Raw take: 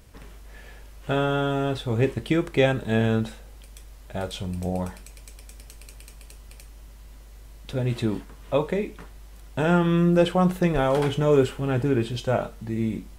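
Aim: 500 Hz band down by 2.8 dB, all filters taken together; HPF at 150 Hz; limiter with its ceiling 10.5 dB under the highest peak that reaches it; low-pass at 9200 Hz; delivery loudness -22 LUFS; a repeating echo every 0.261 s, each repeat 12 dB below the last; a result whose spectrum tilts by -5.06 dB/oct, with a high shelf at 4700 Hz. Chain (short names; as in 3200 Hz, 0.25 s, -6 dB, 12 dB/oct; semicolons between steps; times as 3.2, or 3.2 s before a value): HPF 150 Hz; LPF 9200 Hz; bell 500 Hz -3.5 dB; high shelf 4700 Hz +7.5 dB; limiter -17.5 dBFS; feedback echo 0.261 s, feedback 25%, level -12 dB; gain +8 dB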